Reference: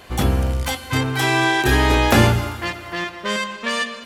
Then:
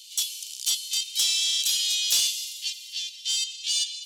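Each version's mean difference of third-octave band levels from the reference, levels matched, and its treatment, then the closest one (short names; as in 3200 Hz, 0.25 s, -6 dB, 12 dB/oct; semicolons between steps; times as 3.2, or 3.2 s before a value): 22.5 dB: steep high-pass 3000 Hz 48 dB/oct; bell 6300 Hz +9.5 dB 1.4 oct; soft clip -13 dBFS, distortion -20 dB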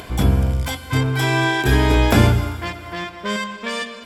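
2.5 dB: ripple EQ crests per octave 1.7, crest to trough 6 dB; upward compressor, threshold -27 dBFS; low shelf 410 Hz +5.5 dB; gain -3.5 dB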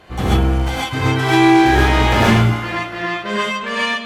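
5.5 dB: LPF 2700 Hz 6 dB/oct; overloaded stage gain 14 dB; non-linear reverb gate 0.16 s rising, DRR -7 dB; gain -2 dB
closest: second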